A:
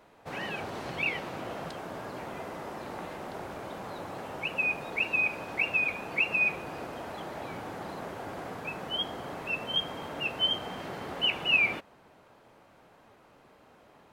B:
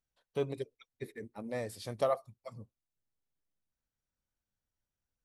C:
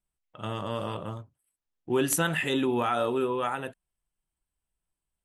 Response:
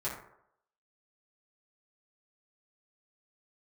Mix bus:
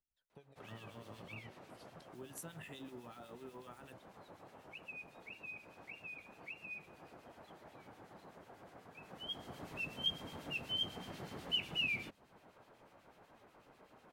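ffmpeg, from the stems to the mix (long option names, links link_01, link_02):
-filter_complex "[0:a]adelay=300,volume=-1.5dB,afade=type=in:start_time=8.97:duration=0.8:silence=0.237137[link_01];[1:a]aphaser=in_gain=1:out_gain=1:delay=3.7:decay=0.6:speed=0.41:type=triangular,acompressor=threshold=-44dB:ratio=6,volume=-12dB[link_02];[2:a]acompressor=threshold=-34dB:ratio=6,acrusher=bits=8:mix=0:aa=0.5,adelay=250,volume=-9dB[link_03];[link_01][link_02][link_03]amix=inputs=3:normalize=0,acrossover=split=280|3000[link_04][link_05][link_06];[link_05]acompressor=threshold=-51dB:ratio=2.5[link_07];[link_04][link_07][link_06]amix=inputs=3:normalize=0,acrossover=split=2000[link_08][link_09];[link_08]aeval=exprs='val(0)*(1-0.7/2+0.7/2*cos(2*PI*8.1*n/s))':channel_layout=same[link_10];[link_09]aeval=exprs='val(0)*(1-0.7/2-0.7/2*cos(2*PI*8.1*n/s))':channel_layout=same[link_11];[link_10][link_11]amix=inputs=2:normalize=0"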